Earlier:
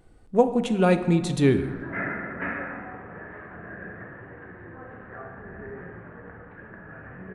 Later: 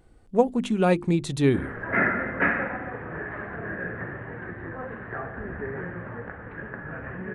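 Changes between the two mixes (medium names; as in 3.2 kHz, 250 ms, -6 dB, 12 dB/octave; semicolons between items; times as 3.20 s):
background +12.0 dB; reverb: off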